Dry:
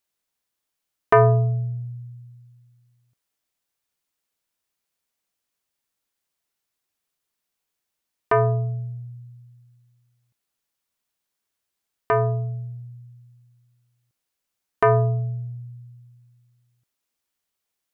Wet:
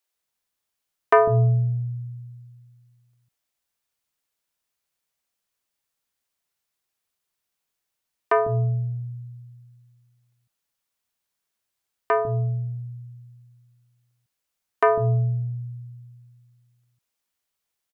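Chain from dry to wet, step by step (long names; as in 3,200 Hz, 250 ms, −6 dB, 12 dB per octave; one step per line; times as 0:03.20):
multiband delay without the direct sound highs, lows 150 ms, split 290 Hz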